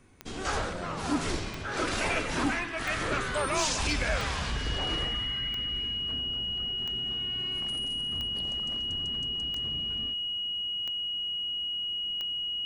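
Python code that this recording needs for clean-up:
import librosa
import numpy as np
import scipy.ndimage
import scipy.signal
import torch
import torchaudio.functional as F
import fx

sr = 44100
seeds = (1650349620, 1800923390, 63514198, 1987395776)

y = fx.fix_declip(x, sr, threshold_db=-19.0)
y = fx.fix_declick_ar(y, sr, threshold=10.0)
y = fx.notch(y, sr, hz=2900.0, q=30.0)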